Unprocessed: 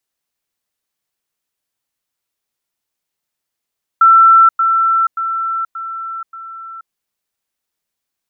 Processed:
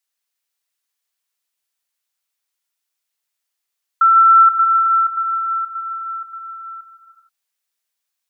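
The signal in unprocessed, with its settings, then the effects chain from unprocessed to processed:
level staircase 1,340 Hz −4 dBFS, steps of −6 dB, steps 5, 0.48 s 0.10 s
high-pass filter 1,400 Hz 6 dB per octave
reverb whose tail is shaped and stops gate 490 ms flat, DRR 4.5 dB

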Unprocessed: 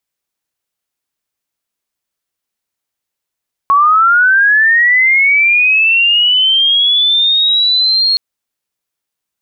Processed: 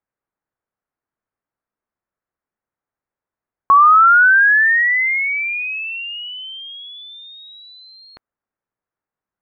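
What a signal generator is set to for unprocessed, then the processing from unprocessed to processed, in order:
glide linear 1,100 Hz → 4,300 Hz −5.5 dBFS → −8.5 dBFS 4.47 s
low-pass filter 1,700 Hz 24 dB per octave

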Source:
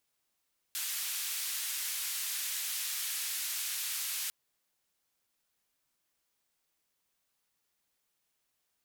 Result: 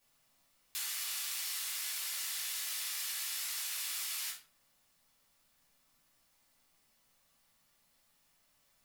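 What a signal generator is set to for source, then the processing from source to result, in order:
band-limited noise 1,900–16,000 Hz, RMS −36 dBFS 3.55 s
downward compressor 5 to 1, threshold −44 dBFS
rectangular room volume 400 cubic metres, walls furnished, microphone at 5.8 metres

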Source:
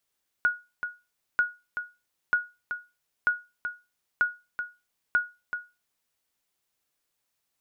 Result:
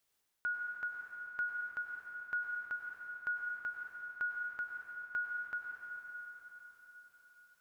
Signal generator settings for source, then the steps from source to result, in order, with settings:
ping with an echo 1,450 Hz, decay 0.26 s, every 0.94 s, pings 6, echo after 0.38 s, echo −9 dB −15 dBFS
reversed playback
downward compressor, threshold −36 dBFS
reversed playback
dense smooth reverb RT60 4.5 s, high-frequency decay 0.9×, pre-delay 85 ms, DRR 0 dB

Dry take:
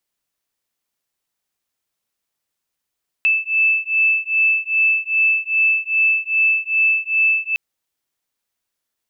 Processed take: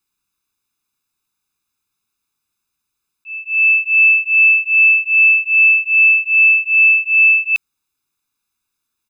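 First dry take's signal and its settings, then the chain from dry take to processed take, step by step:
two tones that beat 2,630 Hz, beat 2.5 Hz, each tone −17.5 dBFS 4.31 s
volume swells 519 ms
comb filter 0.8 ms, depth 100%

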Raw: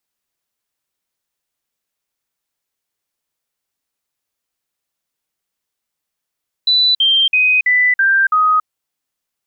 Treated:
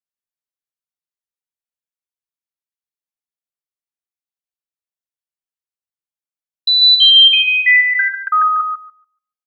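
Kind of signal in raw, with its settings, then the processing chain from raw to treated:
stepped sweep 3,980 Hz down, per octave 3, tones 6, 0.28 s, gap 0.05 s −9.5 dBFS
double-tracking delay 13 ms −4 dB
noise gate with hold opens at −15 dBFS
feedback echo with a high-pass in the loop 144 ms, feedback 20%, high-pass 1,100 Hz, level −4.5 dB

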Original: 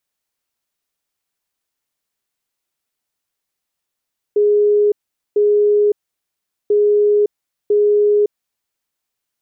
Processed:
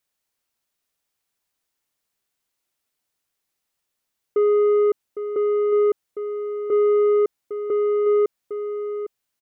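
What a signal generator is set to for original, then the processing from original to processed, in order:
beeps in groups sine 415 Hz, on 0.56 s, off 0.44 s, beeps 2, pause 0.78 s, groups 2, −10 dBFS
soft clipping −14.5 dBFS
on a send: single-tap delay 806 ms −10.5 dB

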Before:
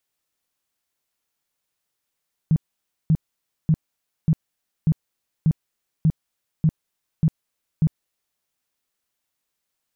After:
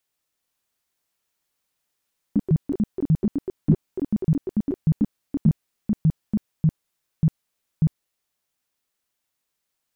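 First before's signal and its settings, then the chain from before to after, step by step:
tone bursts 158 Hz, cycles 8, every 0.59 s, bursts 10, −13 dBFS
delay with pitch and tempo change per echo 477 ms, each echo +5 semitones, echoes 3

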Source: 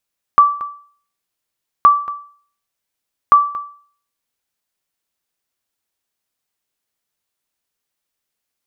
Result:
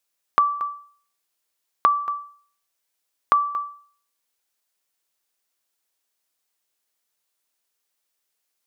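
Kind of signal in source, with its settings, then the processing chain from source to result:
ping with an echo 1,160 Hz, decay 0.48 s, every 1.47 s, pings 3, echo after 0.23 s, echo −17.5 dB −1.5 dBFS
downward compressor 3 to 1, threshold −18 dBFS
bass and treble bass −10 dB, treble +3 dB

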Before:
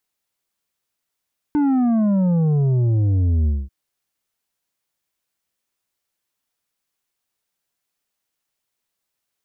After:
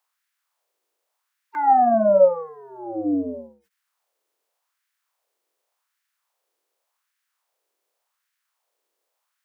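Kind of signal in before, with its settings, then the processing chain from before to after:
bass drop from 300 Hz, over 2.14 s, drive 7 dB, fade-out 0.22 s, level −15.5 dB
spectral magnitudes quantised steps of 30 dB
octave-band graphic EQ 125/500/1,000 Hz −9/+7/+4 dB
auto-filter high-pass sine 0.87 Hz 350–1,700 Hz

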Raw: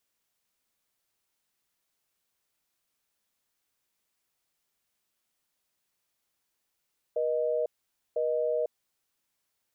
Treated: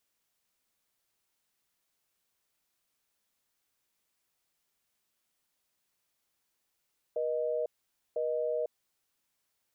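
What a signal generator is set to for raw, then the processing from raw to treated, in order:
call progress tone busy tone, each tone −28 dBFS 1.70 s
brickwall limiter −25.5 dBFS

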